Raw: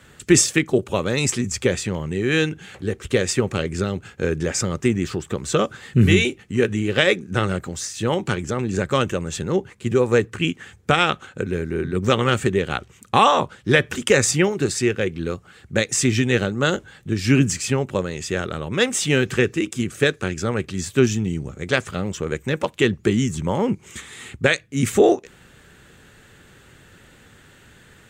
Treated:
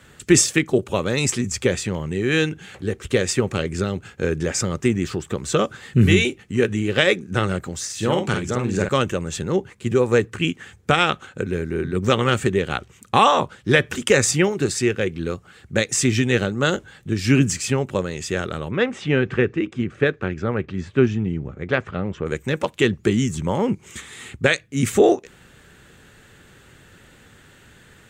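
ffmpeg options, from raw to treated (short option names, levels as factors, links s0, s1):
-filter_complex "[0:a]asettb=1/sr,asplit=3[s0][s1][s2];[s0]atrim=end=7.854[s3];[s1]atrim=start=7.85:end=8.89,asetpts=PTS-STARTPTS,afade=t=in:d=0.004:c=qsin,afade=t=out:st=1.036:d=0.004:c=qsin,asplit=2[s4][s5];[s5]adelay=49,volume=0.596[s6];[s4][s6]amix=inputs=2:normalize=0,atrim=end_sample=45864[s7];[s2]atrim=start=8.886[s8];[s3][s7]acrossfade=d=0.004:c1=hsin:c2=qsin[s9];[s9][s8]acrossfade=d=0.004:c1=qsin:c2=hsin,asettb=1/sr,asplit=3[s10][s11][s12];[s10]atrim=end=18.714[s13];[s11]atrim=start=18.71:end=22.26,asetpts=PTS-STARTPTS,afade=t=in:d=0.004:c=qsin,afade=t=out:st=3.546:d=0.004:c=qsin,lowpass=2200[s14];[s12]atrim=start=22.256[s15];[s13][s14]acrossfade=d=0.004:c1=hsin:c2=qsin[s16];[s16][s15]acrossfade=d=0.004:c1=qsin:c2=hsin"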